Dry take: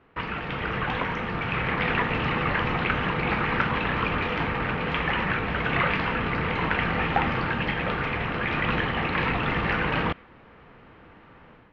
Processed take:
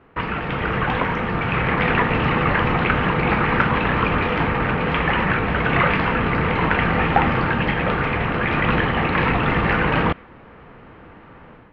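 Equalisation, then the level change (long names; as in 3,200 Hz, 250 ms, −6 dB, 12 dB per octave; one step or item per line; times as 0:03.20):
high-shelf EQ 3,400 Hz −10 dB
+7.5 dB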